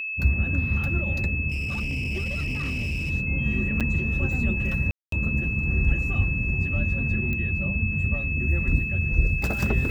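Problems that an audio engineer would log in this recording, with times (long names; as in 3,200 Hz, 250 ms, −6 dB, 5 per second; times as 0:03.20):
whistle 2,600 Hz −28 dBFS
0:01.49–0:03.11: clipping −24.5 dBFS
0:03.80–0:03.81: drop-out 6.7 ms
0:04.91–0:05.12: drop-out 213 ms
0:07.33: click −18 dBFS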